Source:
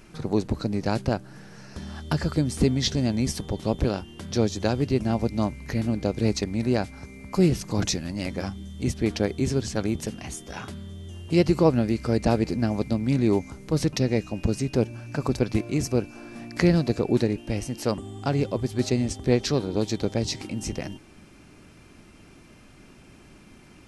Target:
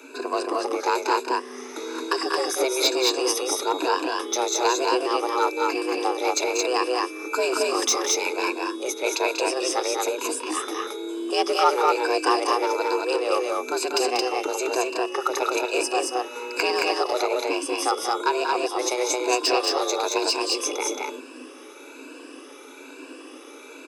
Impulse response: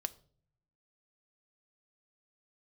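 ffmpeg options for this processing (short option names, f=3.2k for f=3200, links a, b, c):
-filter_complex "[0:a]afftfilt=real='re*pow(10,12/40*sin(2*PI*(1.2*log(max(b,1)*sr/1024/100)/log(2)-(1.1)*(pts-256)/sr)))':imag='im*pow(10,12/40*sin(2*PI*(1.2*log(max(b,1)*sr/1024/100)/log(2)-(1.1)*(pts-256)/sr)))':win_size=1024:overlap=0.75,afreqshift=250,aecho=1:1:0.8:0.64,asplit=2[a][b];[b]asoftclip=type=tanh:threshold=-20.5dB,volume=-4.5dB[c];[a][c]amix=inputs=2:normalize=0,highpass=130,acrossover=split=550|1800[d][e][f];[d]acompressor=threshold=-32dB:ratio=6[g];[f]asoftclip=type=hard:threshold=-15.5dB[h];[g][e][h]amix=inputs=3:normalize=0,aecho=1:1:189.5|221.6:0.398|0.794"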